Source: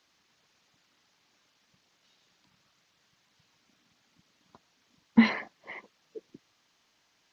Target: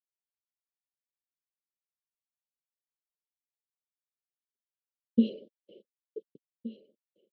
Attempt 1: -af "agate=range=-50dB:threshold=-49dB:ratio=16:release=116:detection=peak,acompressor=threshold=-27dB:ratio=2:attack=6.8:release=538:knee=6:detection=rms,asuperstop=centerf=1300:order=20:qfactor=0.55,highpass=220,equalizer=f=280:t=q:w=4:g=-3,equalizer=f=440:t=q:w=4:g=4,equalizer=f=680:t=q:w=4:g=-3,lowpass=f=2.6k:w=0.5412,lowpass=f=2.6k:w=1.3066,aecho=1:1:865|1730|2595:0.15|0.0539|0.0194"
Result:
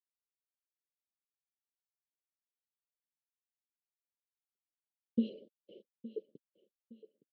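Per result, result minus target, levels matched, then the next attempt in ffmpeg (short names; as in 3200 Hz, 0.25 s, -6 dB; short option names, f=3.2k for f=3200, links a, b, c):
compressor: peak gain reduction +8.5 dB; echo 0.605 s early
-af "agate=range=-50dB:threshold=-49dB:ratio=16:release=116:detection=peak,asuperstop=centerf=1300:order=20:qfactor=0.55,highpass=220,equalizer=f=280:t=q:w=4:g=-3,equalizer=f=440:t=q:w=4:g=4,equalizer=f=680:t=q:w=4:g=-3,lowpass=f=2.6k:w=0.5412,lowpass=f=2.6k:w=1.3066,aecho=1:1:865|1730|2595:0.15|0.0539|0.0194"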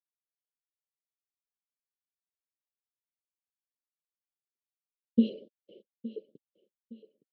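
echo 0.605 s early
-af "agate=range=-50dB:threshold=-49dB:ratio=16:release=116:detection=peak,asuperstop=centerf=1300:order=20:qfactor=0.55,highpass=220,equalizer=f=280:t=q:w=4:g=-3,equalizer=f=440:t=q:w=4:g=4,equalizer=f=680:t=q:w=4:g=-3,lowpass=f=2.6k:w=0.5412,lowpass=f=2.6k:w=1.3066,aecho=1:1:1470|2940|4410:0.15|0.0539|0.0194"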